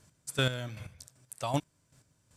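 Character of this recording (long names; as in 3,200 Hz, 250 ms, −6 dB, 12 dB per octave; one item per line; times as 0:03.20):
chopped level 2.6 Hz, depth 65%, duty 25%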